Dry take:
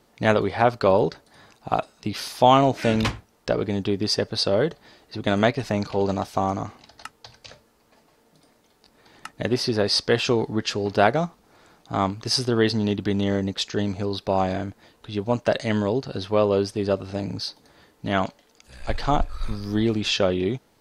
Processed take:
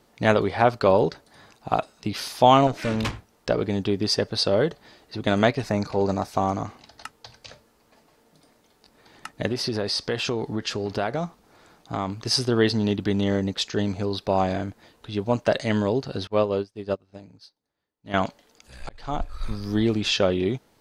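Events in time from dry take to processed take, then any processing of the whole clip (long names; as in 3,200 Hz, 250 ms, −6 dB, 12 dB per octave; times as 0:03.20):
0:02.67–0:03.13: tube saturation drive 19 dB, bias 0.5
0:05.65–0:06.32: parametric band 3,100 Hz −11 dB 0.36 octaves
0:09.49–0:12.22: downward compressor 3 to 1, threshold −23 dBFS
0:16.27–0:18.14: expander for the loud parts 2.5 to 1, over −36 dBFS
0:18.89–0:19.77: fade in equal-power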